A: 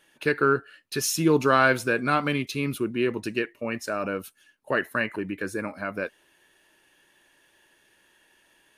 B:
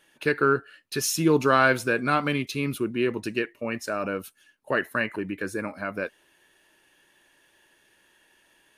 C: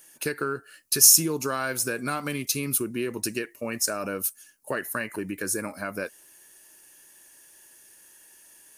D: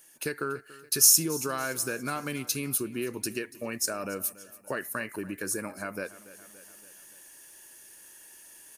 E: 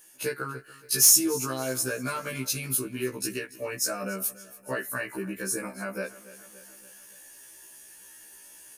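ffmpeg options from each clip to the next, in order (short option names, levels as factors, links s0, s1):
-af anull
-af "acompressor=threshold=0.0501:ratio=4,aexciter=amount=7.5:drive=3.4:freq=5000"
-af "aecho=1:1:285|570|855|1140:0.112|0.0561|0.0281|0.014,areverse,acompressor=mode=upward:threshold=0.01:ratio=2.5,areverse,volume=0.668"
-af "volume=3.35,asoftclip=hard,volume=0.299,afftfilt=real='re*1.73*eq(mod(b,3),0)':imag='im*1.73*eq(mod(b,3),0)':win_size=2048:overlap=0.75,volume=1.58"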